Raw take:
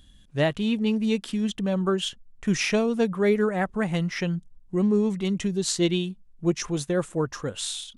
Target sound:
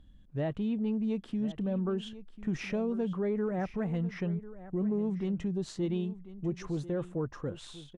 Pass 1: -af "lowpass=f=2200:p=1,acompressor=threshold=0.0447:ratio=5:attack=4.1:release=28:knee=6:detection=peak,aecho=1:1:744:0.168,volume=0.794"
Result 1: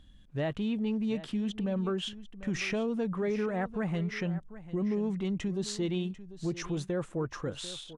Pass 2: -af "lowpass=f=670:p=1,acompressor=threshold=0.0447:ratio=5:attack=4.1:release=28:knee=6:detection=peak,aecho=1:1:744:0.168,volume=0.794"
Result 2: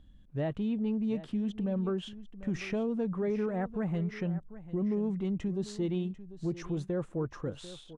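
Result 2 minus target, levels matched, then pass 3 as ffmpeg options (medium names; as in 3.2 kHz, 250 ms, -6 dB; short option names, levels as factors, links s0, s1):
echo 300 ms early
-af "lowpass=f=670:p=1,acompressor=threshold=0.0447:ratio=5:attack=4.1:release=28:knee=6:detection=peak,aecho=1:1:1044:0.168,volume=0.794"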